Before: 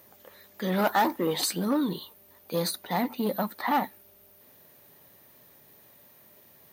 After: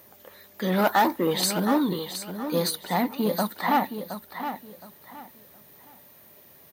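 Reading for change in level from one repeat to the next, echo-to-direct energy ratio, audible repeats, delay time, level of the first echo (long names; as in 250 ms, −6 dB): −11.5 dB, −9.0 dB, 3, 718 ms, −9.5 dB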